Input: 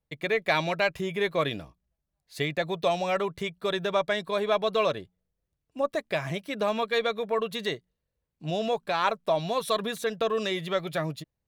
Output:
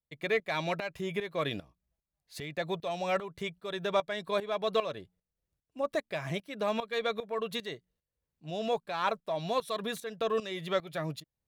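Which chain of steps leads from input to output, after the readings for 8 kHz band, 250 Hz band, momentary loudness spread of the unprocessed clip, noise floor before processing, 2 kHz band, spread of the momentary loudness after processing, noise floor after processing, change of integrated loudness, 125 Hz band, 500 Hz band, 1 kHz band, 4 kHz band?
-5.5 dB, -5.0 dB, 7 LU, -84 dBFS, -6.5 dB, 9 LU, under -85 dBFS, -5.5 dB, -5.0 dB, -5.0 dB, -5.0 dB, -5.5 dB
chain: in parallel at -5 dB: one-sided clip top -20 dBFS; on the sum: tremolo saw up 2.5 Hz, depth 80%; trim -5 dB

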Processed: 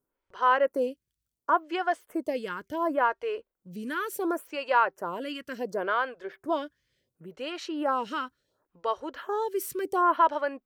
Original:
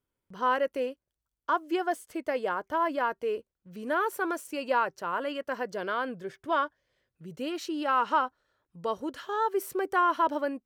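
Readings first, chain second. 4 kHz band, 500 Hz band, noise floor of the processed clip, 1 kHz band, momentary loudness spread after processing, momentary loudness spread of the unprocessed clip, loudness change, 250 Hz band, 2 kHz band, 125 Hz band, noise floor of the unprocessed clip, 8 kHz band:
+1.0 dB, +1.0 dB, under -85 dBFS, +1.0 dB, 12 LU, 10 LU, +1.0 dB, +0.5 dB, +1.0 dB, -1.0 dB, under -85 dBFS, +1.5 dB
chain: lamp-driven phase shifter 0.7 Hz; trim +4.5 dB

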